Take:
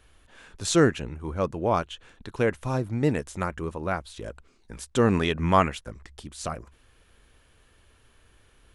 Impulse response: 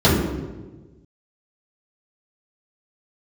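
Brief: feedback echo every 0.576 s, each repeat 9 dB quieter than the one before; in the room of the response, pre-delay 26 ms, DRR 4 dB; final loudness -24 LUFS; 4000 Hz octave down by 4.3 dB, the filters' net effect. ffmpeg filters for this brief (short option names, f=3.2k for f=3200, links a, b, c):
-filter_complex "[0:a]equalizer=f=4k:t=o:g=-5.5,aecho=1:1:576|1152|1728|2304:0.355|0.124|0.0435|0.0152,asplit=2[a][b];[1:a]atrim=start_sample=2205,adelay=26[c];[b][c]afir=irnorm=-1:irlink=0,volume=-28dB[d];[a][d]amix=inputs=2:normalize=0,volume=-3.5dB"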